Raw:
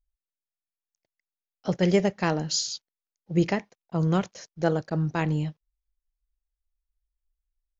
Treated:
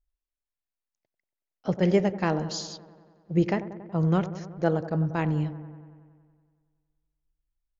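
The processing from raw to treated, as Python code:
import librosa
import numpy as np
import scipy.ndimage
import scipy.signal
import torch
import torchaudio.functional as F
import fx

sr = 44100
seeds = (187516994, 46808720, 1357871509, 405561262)

p1 = fx.high_shelf(x, sr, hz=3600.0, db=-11.5)
y = p1 + fx.echo_wet_lowpass(p1, sr, ms=93, feedback_pct=70, hz=1300.0, wet_db=-13.0, dry=0)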